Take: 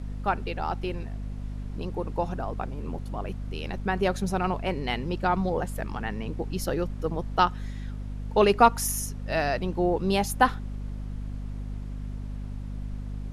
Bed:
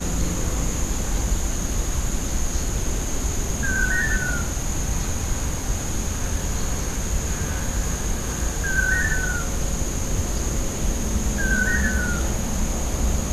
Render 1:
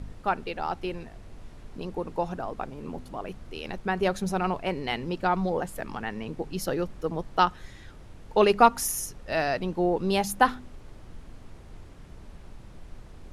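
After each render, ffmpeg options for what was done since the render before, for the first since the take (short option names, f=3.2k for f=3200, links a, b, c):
-af "bandreject=f=50:t=h:w=4,bandreject=f=100:t=h:w=4,bandreject=f=150:t=h:w=4,bandreject=f=200:t=h:w=4,bandreject=f=250:t=h:w=4"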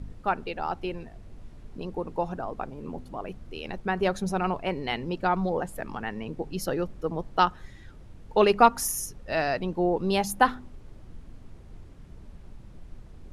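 -af "afftdn=nr=6:nf=-47"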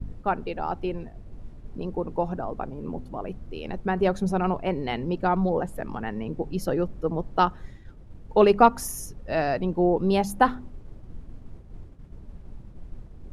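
-af "tiltshelf=f=1.1k:g=4.5,agate=range=-33dB:threshold=-37dB:ratio=3:detection=peak"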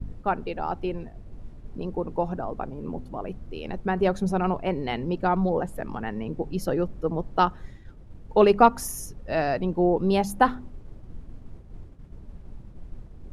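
-af anull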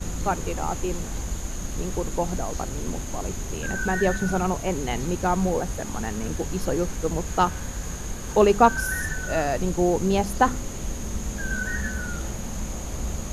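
-filter_complex "[1:a]volume=-7.5dB[a];[0:a][a]amix=inputs=2:normalize=0"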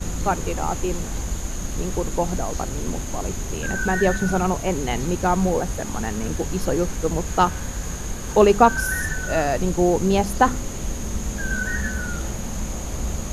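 -af "volume=3dB,alimiter=limit=-2dB:level=0:latency=1"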